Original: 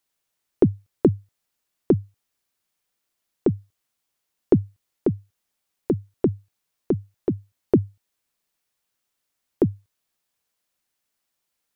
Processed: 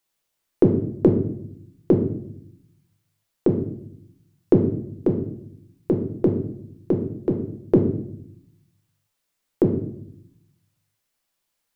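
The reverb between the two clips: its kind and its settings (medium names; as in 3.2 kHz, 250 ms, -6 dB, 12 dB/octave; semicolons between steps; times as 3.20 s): simulated room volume 140 m³, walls mixed, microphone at 0.71 m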